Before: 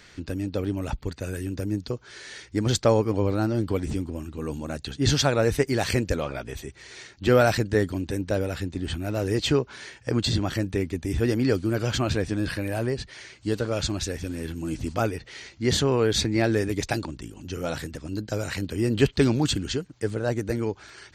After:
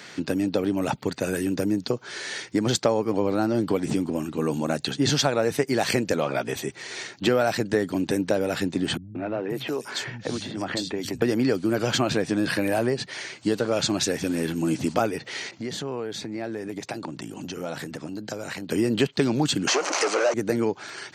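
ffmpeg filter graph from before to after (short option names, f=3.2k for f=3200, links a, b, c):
-filter_complex "[0:a]asettb=1/sr,asplit=3[a][b][c];[a]atrim=end=8.974[d];[b]atrim=start=8.97:end=11.22,asetpts=PTS-STARTPTS,afade=t=in:d=0.004:c=qsin,afade=t=out:st=2.246:d=0.004:c=qsin,acompressor=threshold=-30dB:ratio=12:attack=3.2:release=140:knee=1:detection=peak,acrossover=split=170|3100[e][f][g];[f]adelay=180[h];[g]adelay=530[i];[e][h][i]amix=inputs=3:normalize=0,atrim=end_sample=99225[j];[c]atrim=start=11.216[k];[d][j]acrossfade=d=0.004:c1=hsin:c2=qsin[l];[l][k]acrossfade=d=0.004:c1=qsin:c2=hsin,asettb=1/sr,asplit=3[m][n][o];[m]atrim=end=15.514[p];[n]atrim=start=15.51:end=18.7,asetpts=PTS-STARTPTS,afade=t=in:d=0.004:c=qsin,afade=t=out:st=3.186:d=0.004:c=qsin,acompressor=threshold=-36dB:ratio=8:attack=3.2:release=140:knee=1:detection=peak,adynamicequalizer=threshold=0.002:dfrequency=2300:dqfactor=0.7:tfrequency=2300:tqfactor=0.7:attack=5:release=100:ratio=0.375:range=2.5:mode=cutabove:tftype=highshelf[q];[o]atrim=start=18.696[r];[p][q]acrossfade=d=0.004:c1=hsin:c2=qsin[s];[s][r]acrossfade=d=0.004:c1=qsin:c2=hsin,asettb=1/sr,asplit=3[t][u][v];[t]atrim=end=19.674[w];[u]atrim=start=19.67:end=20.34,asetpts=PTS-STARTPTS,afade=t=in:d=0.004:c=qsin,afade=t=out:st=0.666:d=0.004:c=qsin,aeval=exprs='val(0)+0.5*0.0141*sgn(val(0))':c=same,asplit=2[x][y];[y]highpass=f=720:p=1,volume=30dB,asoftclip=type=tanh:threshold=-12dB[z];[x][z]amix=inputs=2:normalize=0,lowpass=f=1.9k:p=1,volume=-6dB,highpass=f=410:w=0.5412,highpass=f=410:w=1.3066,equalizer=f=450:t=q:w=4:g=-7,equalizer=f=870:t=q:w=4:g=-4,equalizer=f=1.7k:t=q:w=4:g=-6,equalizer=f=3.5k:t=q:w=4:g=-9,equalizer=f=6.1k:t=q:w=4:g=8,lowpass=f=8.3k:w=0.5412,lowpass=f=8.3k:w=1.3066[aa];[v]atrim=start=20.336[ab];[w][aa]acrossfade=d=0.004:c1=hsin:c2=qsin[ac];[ac][ab]acrossfade=d=0.004:c1=qsin:c2=hsin,highpass=f=140:w=0.5412,highpass=f=140:w=1.3066,equalizer=f=760:t=o:w=0.77:g=3.5,acompressor=threshold=-28dB:ratio=4,volume=8dB"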